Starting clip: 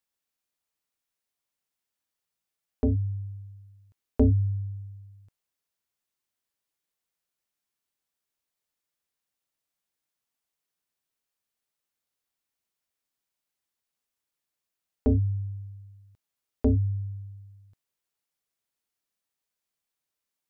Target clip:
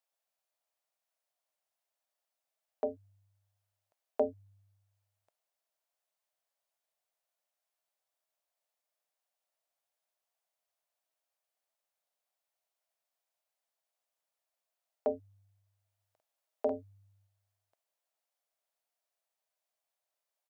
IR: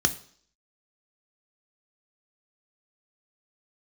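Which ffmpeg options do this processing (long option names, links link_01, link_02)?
-filter_complex "[0:a]highpass=frequency=640:width_type=q:width=4.3,asplit=3[link_01][link_02][link_03];[link_01]afade=type=out:start_time=15.98:duration=0.02[link_04];[link_02]asplit=2[link_05][link_06];[link_06]adelay=49,volume=-4.5dB[link_07];[link_05][link_07]amix=inputs=2:normalize=0,afade=type=in:start_time=15.98:duration=0.02,afade=type=out:start_time=17.26:duration=0.02[link_08];[link_03]afade=type=in:start_time=17.26:duration=0.02[link_09];[link_04][link_08][link_09]amix=inputs=3:normalize=0,volume=-4dB"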